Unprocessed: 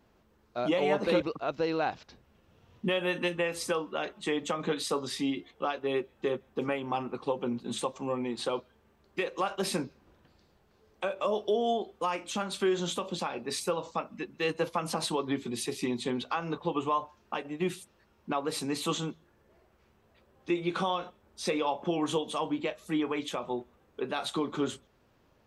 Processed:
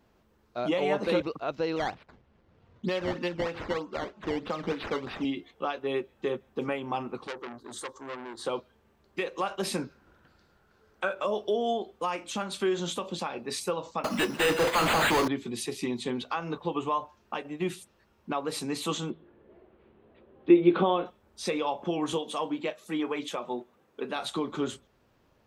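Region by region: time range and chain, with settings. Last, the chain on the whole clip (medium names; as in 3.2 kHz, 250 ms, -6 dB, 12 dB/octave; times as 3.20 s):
1.76–5.25 s: decimation with a swept rate 12× 3.2 Hz + distance through air 180 m
7.27–8.45 s: static phaser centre 680 Hz, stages 6 + transformer saturation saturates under 2.8 kHz
9.82–11.24 s: peaking EQ 1.4 kHz +12 dB 0.44 oct + band-stop 1.2 kHz, Q 14
14.04–15.28 s: careless resampling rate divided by 8×, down none, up hold + overdrive pedal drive 34 dB, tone 4.9 kHz, clips at -17.5 dBFS
19.10–21.06 s: steep low-pass 3.7 kHz + peaking EQ 340 Hz +11.5 dB 1.7 oct
22.13–24.16 s: high-pass 160 Hz + phaser 1.8 Hz, delay 4.8 ms, feedback 26%
whole clip: none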